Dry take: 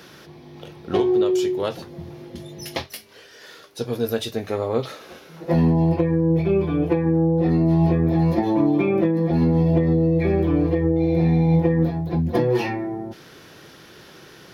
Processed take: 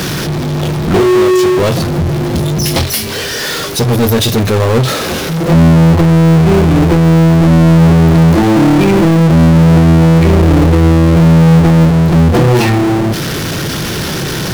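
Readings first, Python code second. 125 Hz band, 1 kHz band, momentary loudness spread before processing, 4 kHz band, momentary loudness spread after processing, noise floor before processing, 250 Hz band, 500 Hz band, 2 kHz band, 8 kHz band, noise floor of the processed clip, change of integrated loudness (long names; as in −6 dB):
+14.0 dB, +14.0 dB, 18 LU, +19.0 dB, 10 LU, −47 dBFS, +11.5 dB, +9.5 dB, +17.0 dB, can't be measured, −18 dBFS, +11.0 dB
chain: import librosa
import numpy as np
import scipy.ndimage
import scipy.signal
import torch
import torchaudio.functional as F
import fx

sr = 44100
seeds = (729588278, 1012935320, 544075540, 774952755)

y = fx.bass_treble(x, sr, bass_db=11, treble_db=4)
y = fx.power_curve(y, sr, exponent=0.35)
y = y * librosa.db_to_amplitude(-1.0)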